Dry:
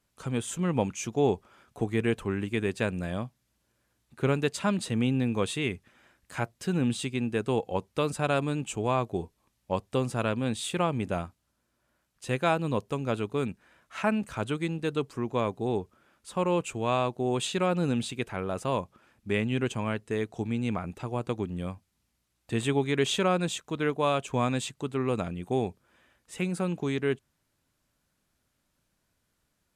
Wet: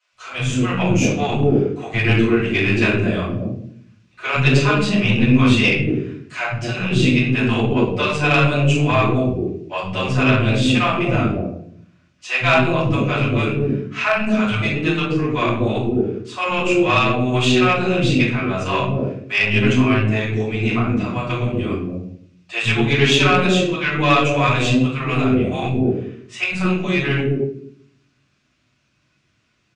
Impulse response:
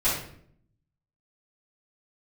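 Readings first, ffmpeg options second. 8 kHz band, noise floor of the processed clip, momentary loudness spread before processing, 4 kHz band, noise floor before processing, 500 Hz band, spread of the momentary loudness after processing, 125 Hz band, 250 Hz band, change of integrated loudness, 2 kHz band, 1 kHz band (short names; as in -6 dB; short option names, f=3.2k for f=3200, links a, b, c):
+5.5 dB, -64 dBFS, 8 LU, +14.0 dB, -77 dBFS, +8.5 dB, 9 LU, +13.5 dB, +12.0 dB, +12.0 dB, +17.0 dB, +10.5 dB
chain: -filter_complex "[0:a]highpass=110,equalizer=f=520:t=q:w=4:g=-4,equalizer=f=870:t=q:w=4:g=-8,equalizer=f=2.6k:t=q:w=4:g=7,lowpass=f=6.3k:w=0.5412,lowpass=f=6.3k:w=1.3066[a];[1:a]atrim=start_sample=2205[b];[a][b]afir=irnorm=-1:irlink=0,aeval=exprs='0.891*(cos(1*acos(clip(val(0)/0.891,-1,1)))-cos(1*PI/2))+0.0891*(cos(4*acos(clip(val(0)/0.891,-1,1)))-cos(4*PI/2))+0.00631*(cos(7*acos(clip(val(0)/0.891,-1,1)))-cos(7*PI/2))':c=same,acrossover=split=180|560[c][d][e];[c]adelay=110[f];[d]adelay=230[g];[f][g][e]amix=inputs=3:normalize=0,volume=1dB"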